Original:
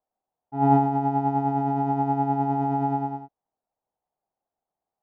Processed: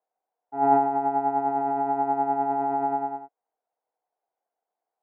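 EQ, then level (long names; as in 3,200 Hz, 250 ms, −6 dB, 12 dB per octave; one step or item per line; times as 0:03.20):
loudspeaker in its box 310–2,500 Hz, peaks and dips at 320 Hz +3 dB, 470 Hz +9 dB, 710 Hz +7 dB, 1,000 Hz +5 dB, 1,500 Hz +8 dB, 2,100 Hz +6 dB
−4.5 dB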